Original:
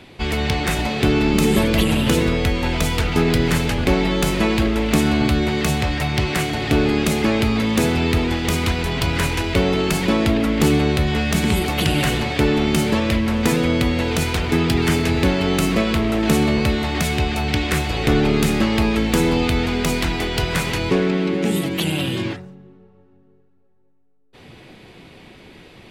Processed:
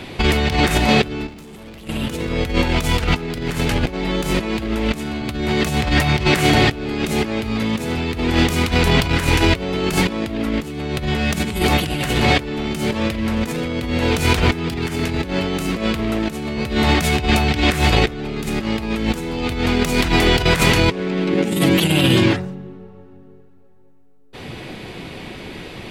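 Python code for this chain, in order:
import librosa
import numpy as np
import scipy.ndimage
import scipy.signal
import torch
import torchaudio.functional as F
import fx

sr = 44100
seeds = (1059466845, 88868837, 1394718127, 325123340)

y = fx.leveller(x, sr, passes=3, at=(1.28, 1.88))
y = fx.over_compress(y, sr, threshold_db=-23.0, ratio=-0.5)
y = y * librosa.db_to_amplitude(5.0)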